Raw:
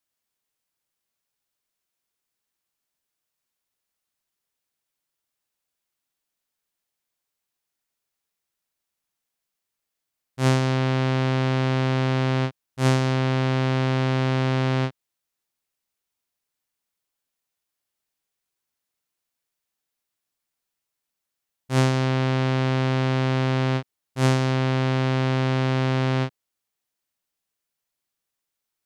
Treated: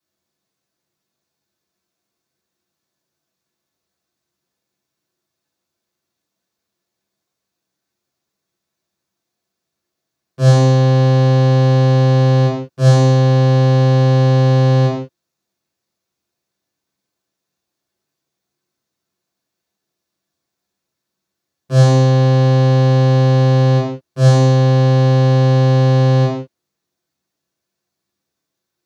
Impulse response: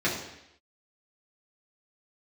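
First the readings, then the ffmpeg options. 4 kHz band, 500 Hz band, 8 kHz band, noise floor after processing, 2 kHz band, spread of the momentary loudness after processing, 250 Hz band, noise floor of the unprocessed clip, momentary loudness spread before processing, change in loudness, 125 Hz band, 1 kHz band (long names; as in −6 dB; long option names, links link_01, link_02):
+4.5 dB, +10.5 dB, can't be measured, −80 dBFS, +1.0 dB, 4 LU, +7.5 dB, −84 dBFS, 4 LU, +10.5 dB, +12.0 dB, +6.5 dB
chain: -filter_complex "[0:a]equalizer=frequency=2100:width_type=o:width=1.1:gain=-8[link_01];[1:a]atrim=start_sample=2205,afade=type=out:start_time=0.23:duration=0.01,atrim=end_sample=10584[link_02];[link_01][link_02]afir=irnorm=-1:irlink=0,volume=-1dB"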